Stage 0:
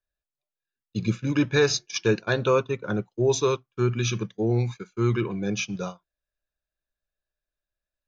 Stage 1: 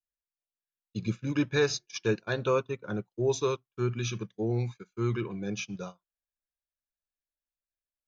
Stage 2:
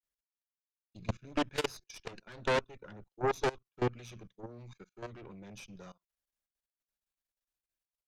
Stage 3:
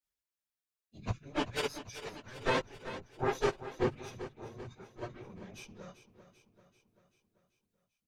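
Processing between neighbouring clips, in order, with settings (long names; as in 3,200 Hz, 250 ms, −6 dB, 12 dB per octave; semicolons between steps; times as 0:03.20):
in parallel at −2 dB: brickwall limiter −21.5 dBFS, peak gain reduction 11 dB; on the sum: expander for the loud parts 1.5 to 1, over −39 dBFS; level −6.5 dB
harmonic generator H 3 −9 dB, 4 −11 dB, 5 −6 dB, 8 −14 dB, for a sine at −15 dBFS; output level in coarse steps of 22 dB; level −5 dB
random phases in long frames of 50 ms; repeating echo 389 ms, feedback 58%, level −13 dB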